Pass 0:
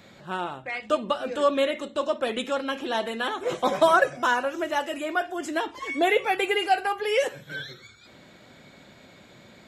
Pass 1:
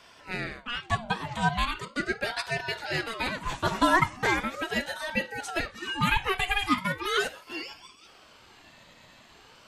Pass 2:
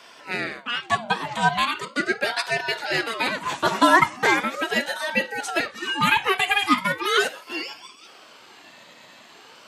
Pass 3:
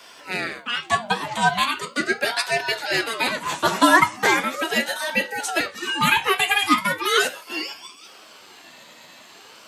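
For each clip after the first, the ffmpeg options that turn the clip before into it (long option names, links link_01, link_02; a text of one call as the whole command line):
ffmpeg -i in.wav -af "tiltshelf=frequency=970:gain=-3.5,aeval=exprs='val(0)*sin(2*PI*800*n/s+800*0.55/0.39*sin(2*PI*0.39*n/s))':channel_layout=same" out.wav
ffmpeg -i in.wav -af "highpass=230,volume=6.5dB" out.wav
ffmpeg -i in.wav -filter_complex "[0:a]acrossover=split=170|1800[link_01][link_02][link_03];[link_03]crystalizer=i=1:c=0[link_04];[link_01][link_02][link_04]amix=inputs=3:normalize=0,flanger=delay=9:depth=4.3:regen=60:speed=0.73:shape=triangular,volume=5dB" out.wav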